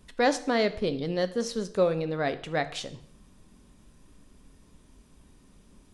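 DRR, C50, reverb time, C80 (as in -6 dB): 11.0 dB, 14.5 dB, 0.60 s, 18.0 dB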